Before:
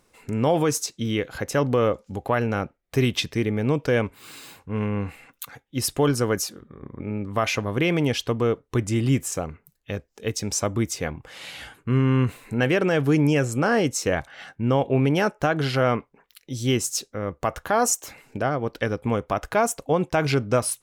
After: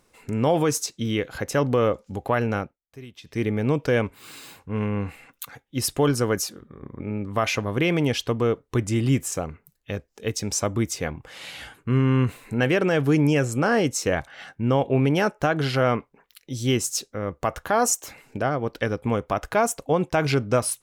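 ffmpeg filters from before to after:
-filter_complex "[0:a]asplit=3[a][b][c];[a]atrim=end=2.77,asetpts=PTS-STARTPTS,afade=t=out:st=2.56:d=0.21:silence=0.0944061[d];[b]atrim=start=2.77:end=3.23,asetpts=PTS-STARTPTS,volume=-20.5dB[e];[c]atrim=start=3.23,asetpts=PTS-STARTPTS,afade=t=in:d=0.21:silence=0.0944061[f];[d][e][f]concat=n=3:v=0:a=1"

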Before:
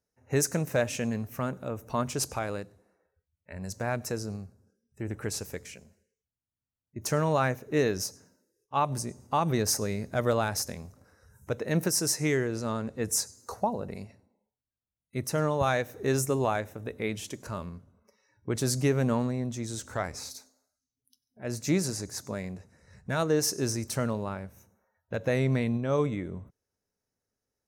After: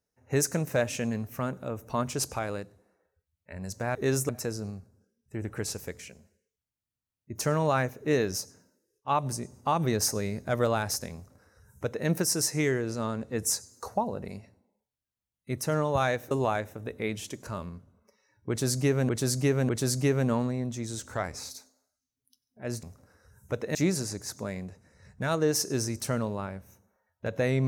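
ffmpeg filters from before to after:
-filter_complex "[0:a]asplit=8[a][b][c][d][e][f][g][h];[a]atrim=end=3.952[i];[b]atrim=start=15.968:end=16.312[j];[c]atrim=start=3.948:end=15.972[k];[d]atrim=start=16.308:end=19.092[l];[e]atrim=start=18.488:end=19.092[m];[f]atrim=start=18.488:end=21.632[n];[g]atrim=start=10.808:end=11.732[o];[h]atrim=start=21.628[p];[i][j]acrossfade=d=0.004:c1=hsin:c2=hsin[q];[q][k]acrossfade=d=0.004:c1=hsin:c2=hsin[r];[r][l]acrossfade=d=0.004:c1=hsin:c2=hsin[s];[s][m]acrossfade=d=0.004:c1=hsin:c2=hsin[t];[t][n]acrossfade=d=0.004:c1=hsin:c2=hsin[u];[u][o]acrossfade=d=0.004:c1=hsin:c2=hsin[v];[v][p]acrossfade=d=0.004:c1=hsin:c2=hsin"

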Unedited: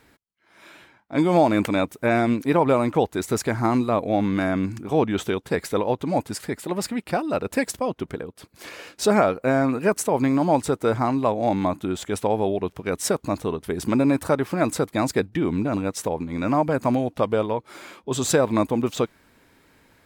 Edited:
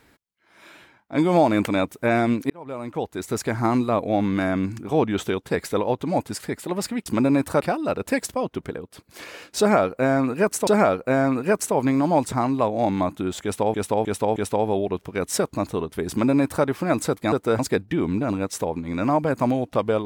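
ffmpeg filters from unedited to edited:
-filter_complex "[0:a]asplit=11[a][b][c][d][e][f][g][h][i][j][k];[a]atrim=end=2.5,asetpts=PTS-STARTPTS,afade=t=out:st=2.496:d=0.004:c=hsin[l];[b]atrim=start=2.5:end=7.062,asetpts=PTS-STARTPTS,afade=t=in:d=1.12[m];[c]atrim=start=13.808:end=14.362[n];[d]atrim=start=7.058:end=10.122[o];[e]atrim=start=9.038:end=10.692[p];[f]atrim=start=10.958:end=12.382[q];[g]atrim=start=12.068:end=12.382[r];[h]atrim=start=12.068:end=12.382[s];[i]atrim=start=12.068:end=15.032[t];[j]atrim=start=10.688:end=10.962[u];[k]atrim=start=15.028[v];[l][m]concat=n=2:v=0:a=1[w];[w][n]acrossfade=d=0.004:c1=hsin:c2=hsin[x];[x][o]acrossfade=d=0.004:c1=hsin:c2=hsin[y];[y][p]acrossfade=d=0.004:c1=hsin:c2=hsin[z];[z][q]acrossfade=d=0.004:c1=hsin:c2=hsin[aa];[aa][r]acrossfade=d=0.004:c1=hsin:c2=hsin[ab];[ab][s]acrossfade=d=0.004:c1=hsin:c2=hsin[ac];[ac][t]acrossfade=d=0.004:c1=hsin:c2=hsin[ad];[ad][u]acrossfade=d=0.004:c1=hsin:c2=hsin[ae];[ae][v]acrossfade=d=0.004:c1=hsin:c2=hsin"

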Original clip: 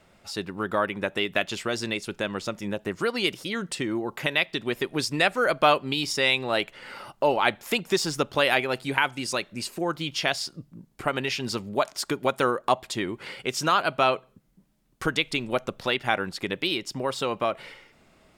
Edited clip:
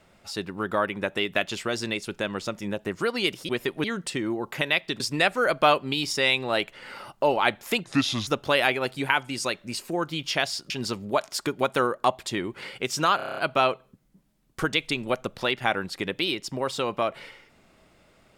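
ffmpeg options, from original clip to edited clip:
-filter_complex "[0:a]asplit=14[a][b][c][d][e][f][g][h][i][j][k][l][m][n];[a]atrim=end=3.492[o];[b]atrim=start=4.648:end=5.002[p];[c]atrim=start=3.488:end=4.652[q];[d]atrim=start=4.998:end=7.844[r];[e]atrim=start=7.84:end=8.15,asetpts=PTS-STARTPTS,asetrate=31752,aresample=44100[s];[f]atrim=start=8.146:end=10.582[t];[g]atrim=start=11.338:end=13.832[u];[h]atrim=start=13.798:end=13.832[v];[i]atrim=start=13.798:end=13.832[w];[j]atrim=start=13.798:end=13.832[x];[k]atrim=start=13.798:end=13.832[y];[l]atrim=start=13.798:end=13.832[z];[m]atrim=start=13.798:end=13.832[aa];[n]atrim=start=13.798[ab];[o][p]acrossfade=d=0.004:c1=hsin:c2=hsin[ac];[ac][q]acrossfade=d=0.004:c1=hsin:c2=hsin[ad];[ad][r]acrossfade=d=0.004:c1=hsin:c2=hsin[ae];[ae][s]acrossfade=d=0.004:c1=hsin:c2=hsin[af];[af][t]acrossfade=d=0.004:c1=hsin:c2=hsin[ag];[ag][u]acrossfade=d=0.004:c1=hsin:c2=hsin[ah];[ah][v]acrossfade=d=0.004:c1=hsin:c2=hsin[ai];[ai][w]acrossfade=d=0.004:c1=hsin:c2=hsin[aj];[aj][x]acrossfade=d=0.004:c1=hsin:c2=hsin[ak];[ak][y]acrossfade=d=0.004:c1=hsin:c2=hsin[al];[al][z]acrossfade=d=0.004:c1=hsin:c2=hsin[am];[am][aa]acrossfade=d=0.004:c1=hsin:c2=hsin[an];[an][ab]acrossfade=d=0.004:c1=hsin:c2=hsin"

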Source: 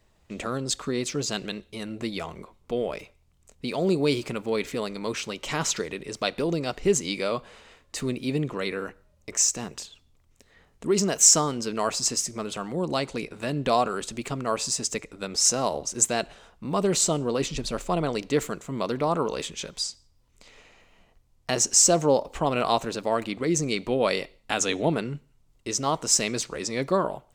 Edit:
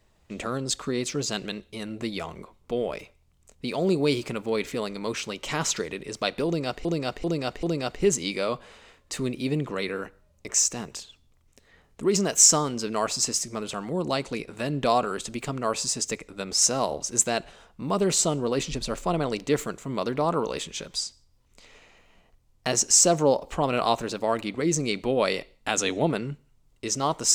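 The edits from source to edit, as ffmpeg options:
-filter_complex "[0:a]asplit=4[a][b][c][d];[a]atrim=end=6.852[e];[b]atrim=start=6.458:end=6.852[f];[c]atrim=start=6.458:end=6.852[g];[d]atrim=start=6.458[h];[e][f]acrossfade=d=0.004:c1=hsin:c2=hsin[i];[i][g]acrossfade=d=0.004:c1=hsin:c2=hsin[j];[j][h]acrossfade=d=0.004:c1=hsin:c2=hsin"

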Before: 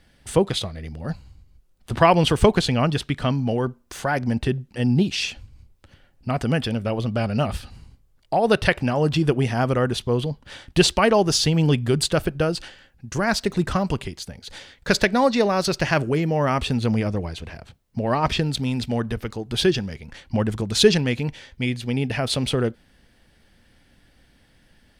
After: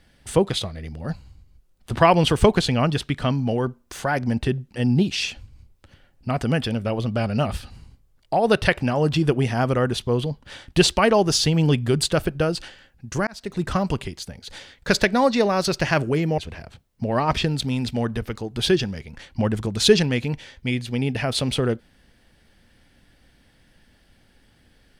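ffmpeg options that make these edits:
-filter_complex "[0:a]asplit=3[a][b][c];[a]atrim=end=13.27,asetpts=PTS-STARTPTS,afade=t=out:st=13.266:d=0.004:c=hsin[d];[b]atrim=start=13.27:end=16.382,asetpts=PTS-STARTPTS,afade=t=in:d=0.49[e];[c]atrim=start=17.328[f];[d][e]concat=n=2:v=0:a=1[g];[g][f]acrossfade=d=0.004:c1=hsin:c2=hsin"

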